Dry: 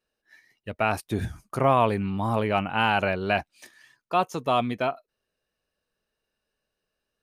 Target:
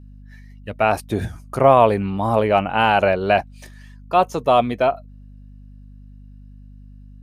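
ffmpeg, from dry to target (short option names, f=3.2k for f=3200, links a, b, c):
-af "adynamicequalizer=threshold=0.0158:dfrequency=580:dqfactor=1.2:tfrequency=580:tqfactor=1.2:attack=5:release=100:ratio=0.375:range=3.5:mode=boostabove:tftype=bell,aeval=exprs='val(0)+0.00631*(sin(2*PI*50*n/s)+sin(2*PI*2*50*n/s)/2+sin(2*PI*3*50*n/s)/3+sin(2*PI*4*50*n/s)/4+sin(2*PI*5*50*n/s)/5)':c=same,volume=3.5dB"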